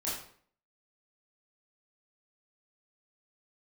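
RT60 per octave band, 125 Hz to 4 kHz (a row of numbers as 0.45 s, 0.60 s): 0.55 s, 0.60 s, 0.55 s, 0.50 s, 0.50 s, 0.45 s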